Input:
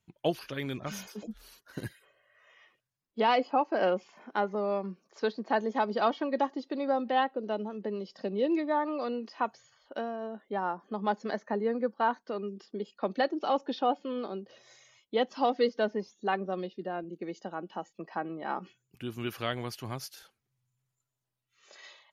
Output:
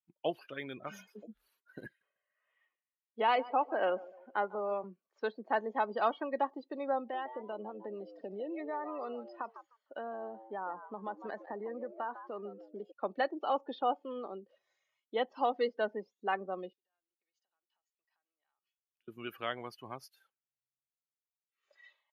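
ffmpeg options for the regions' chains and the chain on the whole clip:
-filter_complex "[0:a]asettb=1/sr,asplit=3[a][b][c];[a]atrim=end=1.864[d];[b]atrim=start=1.86:end=4.84,asetpts=PTS-STARTPTS,afade=t=in:d=0.004:c=qsin,afade=t=out:st=2.976:d=0.004:c=qsin,highpass=170,lowpass=7.7k,aecho=1:1:148|296|444|592:0.112|0.0539|0.0259|0.0124,atrim=end_sample=131418[e];[c]atrim=start=4.836[f];[d][e]acrossfade=d=0.004:c1=hsin:c2=qsin[g];[g][f]acrossfade=d=0.004:c1=qsin:c2=hsin,asettb=1/sr,asplit=3[h][i][j];[h]atrim=end=6.984[k];[i]atrim=start=6.98:end=12.92,asetpts=PTS-STARTPTS,afade=t=in:d=0.004:c=qsin,afade=t=out:st=5.936:d=0.004:c=qsin,acompressor=threshold=-30dB:ratio=6:attack=3.2:release=140:knee=1:detection=peak,asplit=4[l][m][n][o];[m]adelay=152,afreqshift=110,volume=-11dB[p];[n]adelay=304,afreqshift=220,volume=-21.2dB[q];[o]adelay=456,afreqshift=330,volume=-31.3dB[r];[l][p][q][r]amix=inputs=4:normalize=0,atrim=end_sample=261954[s];[j]atrim=start=12.916[t];[k][s]acrossfade=d=0.004:c1=hsin:c2=qsin[u];[u][t]acrossfade=d=0.004:c1=qsin:c2=hsin,asettb=1/sr,asplit=3[v][w][x];[v]atrim=end=16.734[y];[w]atrim=start=16.73:end=19.08,asetpts=PTS-STARTPTS,afade=t=in:d=0.004:c=qsin,afade=t=out:st=2.346:d=0.004:c=qsin,acompressor=threshold=-43dB:ratio=12:attack=3.2:release=140:knee=1:detection=peak,bandpass=f=5.6k:t=q:w=1.5[z];[x]atrim=start=19.076[aa];[y][z]acrossfade=d=0.004:c1=hsin:c2=qsin[ab];[ab][aa]acrossfade=d=0.004:c1=qsin:c2=hsin,afftdn=nr=17:nf=-43,highpass=f=700:p=1,equalizer=f=5.7k:t=o:w=1.3:g=-12.5"

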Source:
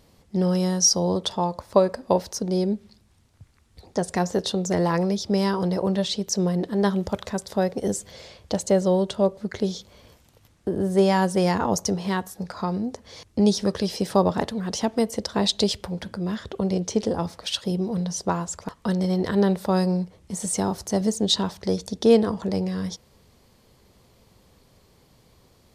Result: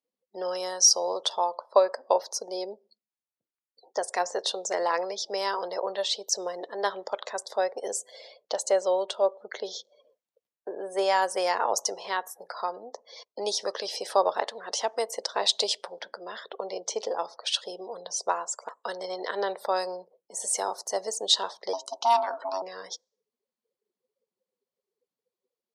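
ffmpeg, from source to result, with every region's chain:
-filter_complex "[0:a]asettb=1/sr,asplit=3[a][b][c];[a]atrim=end=21.734[d];[b]atrim=start=21.73:end=22.62,asetpts=PTS-STARTPTS,afade=t=in:d=0.004:c=qsin,afade=t=out:st=0.886:d=0.004:c=qsin,highshelf=f=5.4k:g=2.5,aeval=exprs='val(0)*sin(2*PI*470*n/s)':c=same[e];[c]atrim=start=22.616[f];[d][e]acrossfade=d=0.004:c1=hsin:c2=qsin[g];[g][f]acrossfade=d=0.004:c1=qsin:c2=hsin,afftdn=nr=35:nf=-46,highpass=f=510:w=0.5412,highpass=f=510:w=1.3066"

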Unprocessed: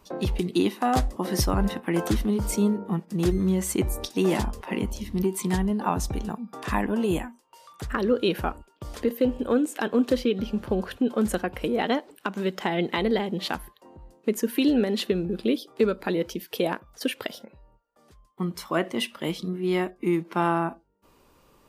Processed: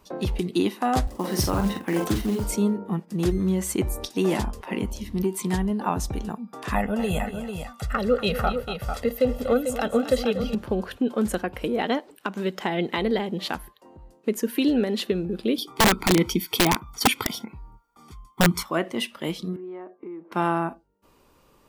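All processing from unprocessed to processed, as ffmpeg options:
-filter_complex "[0:a]asettb=1/sr,asplit=3[a][b][c];[a]atrim=end=1.074[d];[b]atrim=start=1.07:end=2.44,asetpts=PTS-STARTPTS,afade=t=in:d=0.004:c=qsin,afade=t=out:st=1.366:d=0.004:c=qsin,highpass=f=58:w=0.5412,highpass=f=58:w=1.3066,asplit=2[e][f];[f]adelay=45,volume=-6dB[g];[e][g]amix=inputs=2:normalize=0,atrim=end_sample=60417,acrusher=bits=5:mode=log:mix=0:aa=0.000001[h];[c]atrim=start=2.436[i];[d][h]acrossfade=d=0.004:c1=hsin:c2=qsin[j];[j][i]acrossfade=d=0.004:c1=qsin:c2=hsin,asettb=1/sr,asplit=3[k][l][m];[k]atrim=end=6.754[n];[l]atrim=start=6.75:end=10.55,asetpts=PTS-STARTPTS,afade=t=in:d=0.004:c=qsin,afade=t=out:st=3.796:d=0.004:c=qsin,aecho=1:1:1.5:0.89,atrim=end_sample=167580,aecho=1:1:238|446:0.237|0.422,atrim=end_sample=167580[o];[m]atrim=start=10.546[p];[n][o]acrossfade=d=0.004:c1=hsin:c2=qsin[q];[q][p]acrossfade=d=0.004:c1=qsin:c2=hsin,asettb=1/sr,asplit=3[r][s][t];[r]atrim=end=15.584[u];[s]atrim=start=15.58:end=18.63,asetpts=PTS-STARTPTS,afade=t=in:d=0.004:c=qsin,afade=t=out:st=3.046:d=0.004:c=qsin,aecho=1:1:0.9:0.94,atrim=end_sample=134505,acontrast=62,aeval=exprs='(mod(3.55*val(0)+1,2)-1)/3.55':c=same[v];[t]atrim=start=18.626[w];[u][v]acrossfade=d=0.004:c1=hsin:c2=qsin[x];[x][w]acrossfade=d=0.004:c1=qsin:c2=hsin,asettb=1/sr,asplit=3[y][z][aa];[y]atrim=end=19.564[ab];[z]atrim=start=19.56:end=20.32,asetpts=PTS-STARTPTS,afade=t=in:d=0.004:c=qsin,afade=t=out:st=0.756:d=0.004:c=qsin,asuperpass=centerf=630:order=4:qfactor=0.62,acompressor=threshold=-35dB:ratio=5:attack=3.2:release=140:knee=1:detection=peak[ac];[aa]atrim=start=20.316[ad];[ab][ac]acrossfade=d=0.004:c1=hsin:c2=qsin[ae];[ae][ad]acrossfade=d=0.004:c1=qsin:c2=hsin"

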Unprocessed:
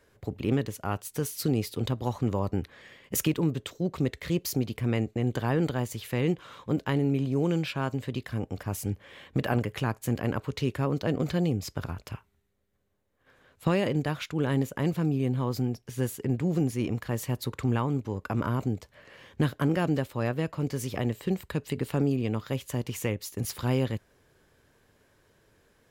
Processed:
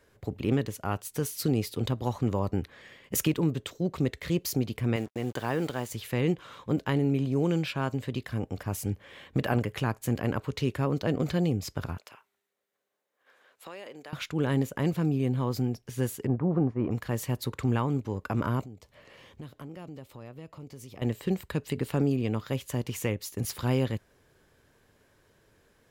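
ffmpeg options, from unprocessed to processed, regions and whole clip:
-filter_complex "[0:a]asettb=1/sr,asplit=3[a][b][c];[a]atrim=end=4.964[d];[b]atrim=start=4.96:end=5.91,asetpts=PTS-STARTPTS,afade=t=in:d=0.004:c=qsin,afade=t=out:st=0.946:d=0.004:c=qsin,lowshelf=f=210:g=-10,acrusher=bits=7:mix=0:aa=0.5[e];[c]atrim=start=5.906[f];[d][e]acrossfade=d=0.004:c1=hsin:c2=qsin[g];[g][f]acrossfade=d=0.004:c1=qsin:c2=hsin,asettb=1/sr,asplit=3[h][i][j];[h]atrim=end=11.974[k];[i]atrim=start=11.97:end=14.13,asetpts=PTS-STARTPTS,afade=t=in:d=0.004:c=qsin,afade=t=out:st=2.156:d=0.004:c=qsin,highpass=500,acompressor=threshold=-49dB:ratio=2:attack=3.2:release=140:knee=1:detection=peak[l];[j]atrim=start=14.126[m];[k][l]acrossfade=d=0.004:c1=hsin:c2=qsin[n];[n][m]acrossfade=d=0.004:c1=qsin:c2=hsin,asettb=1/sr,asplit=3[o][p][q];[o]atrim=end=16.274[r];[p]atrim=start=16.27:end=16.91,asetpts=PTS-STARTPTS,afade=t=in:d=0.004:c=qsin,afade=t=out:st=0.636:d=0.004:c=qsin,lowpass=f=1.1k:t=q:w=2.4,agate=range=-33dB:threshold=-33dB:ratio=3:release=100:detection=peak[s];[q]atrim=start=16.906[t];[r][s]acrossfade=d=0.004:c1=hsin:c2=qsin[u];[u][t]acrossfade=d=0.004:c1=qsin:c2=hsin,asettb=1/sr,asplit=3[v][w][x];[v]atrim=end=18.614[y];[w]atrim=start=18.61:end=21.02,asetpts=PTS-STARTPTS,afade=t=in:d=0.004:c=qsin,afade=t=out:st=2.406:d=0.004:c=qsin,equalizer=f=1.6k:t=o:w=0.32:g=-7.5,acompressor=threshold=-48dB:ratio=2.5:attack=3.2:release=140:knee=1:detection=peak[z];[x]atrim=start=21.016[aa];[y][z]acrossfade=d=0.004:c1=hsin:c2=qsin[ab];[ab][aa]acrossfade=d=0.004:c1=qsin:c2=hsin"

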